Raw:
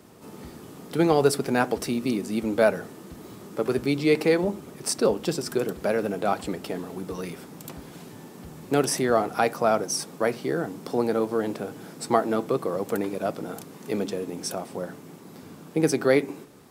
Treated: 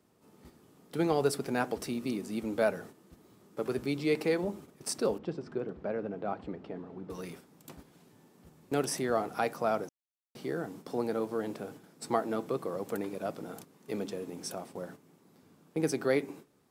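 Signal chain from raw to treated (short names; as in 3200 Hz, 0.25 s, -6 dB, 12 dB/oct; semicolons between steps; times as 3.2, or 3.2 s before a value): gate -39 dBFS, range -9 dB; 5.18–7.1 tape spacing loss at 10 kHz 35 dB; 9.89–10.35 mute; gain -8 dB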